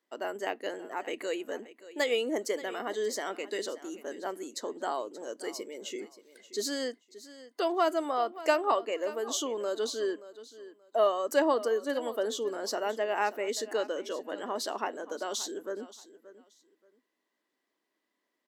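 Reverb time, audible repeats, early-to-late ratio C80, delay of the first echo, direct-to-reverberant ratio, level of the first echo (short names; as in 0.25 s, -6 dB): none, 2, none, 0.578 s, none, -16.5 dB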